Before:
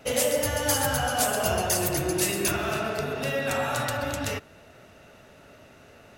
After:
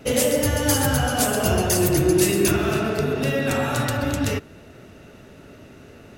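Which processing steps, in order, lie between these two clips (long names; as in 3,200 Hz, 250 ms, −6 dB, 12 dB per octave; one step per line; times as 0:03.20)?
low shelf with overshoot 480 Hz +6 dB, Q 1.5
level +3 dB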